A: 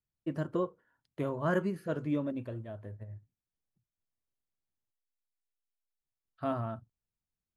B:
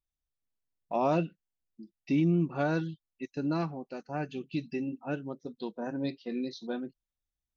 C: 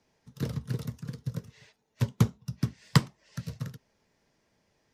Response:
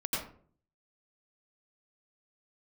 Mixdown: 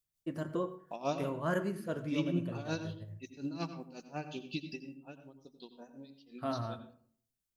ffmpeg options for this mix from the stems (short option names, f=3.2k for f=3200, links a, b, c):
-filter_complex "[0:a]highshelf=f=4.2k:g=9,bandreject=f=74.01:t=h:w=4,bandreject=f=148.02:t=h:w=4,bandreject=f=222.03:t=h:w=4,bandreject=f=296.04:t=h:w=4,bandreject=f=370.05:t=h:w=4,bandreject=f=444.06:t=h:w=4,bandreject=f=518.07:t=h:w=4,bandreject=f=592.08:t=h:w=4,bandreject=f=666.09:t=h:w=4,bandreject=f=740.1:t=h:w=4,bandreject=f=814.11:t=h:w=4,bandreject=f=888.12:t=h:w=4,bandreject=f=962.13:t=h:w=4,bandreject=f=1.03614k:t=h:w=4,bandreject=f=1.11015k:t=h:w=4,bandreject=f=1.18416k:t=h:w=4,bandreject=f=1.25817k:t=h:w=4,bandreject=f=1.33218k:t=h:w=4,bandreject=f=1.40619k:t=h:w=4,bandreject=f=1.4802k:t=h:w=4,bandreject=f=1.55421k:t=h:w=4,bandreject=f=1.62822k:t=h:w=4,bandreject=f=1.70223k:t=h:w=4,bandreject=f=1.77624k:t=h:w=4,bandreject=f=1.85025k:t=h:w=4,bandreject=f=1.92426k:t=h:w=4,bandreject=f=1.99827k:t=h:w=4,bandreject=f=2.07228k:t=h:w=4,bandreject=f=2.14629k:t=h:w=4,bandreject=f=2.2203k:t=h:w=4,bandreject=f=2.29431k:t=h:w=4,bandreject=f=2.36832k:t=h:w=4,bandreject=f=2.44233k:t=h:w=4,bandreject=f=2.51634k:t=h:w=4,bandreject=f=2.59035k:t=h:w=4,bandreject=f=2.66436k:t=h:w=4,volume=-3.5dB,asplit=2[a][b];[b]volume=-19dB[c];[1:a]aexciter=amount=3.4:drive=6.1:freq=2.7k,aeval=exprs='val(0)*pow(10,-18*(0.5-0.5*cos(2*PI*5.5*n/s))/20)':c=same,volume=-5.5dB,afade=t=out:st=4.58:d=0.46:silence=0.334965,asplit=2[d][e];[e]volume=-12.5dB[f];[3:a]atrim=start_sample=2205[g];[c][f]amix=inputs=2:normalize=0[h];[h][g]afir=irnorm=-1:irlink=0[i];[a][d][i]amix=inputs=3:normalize=0"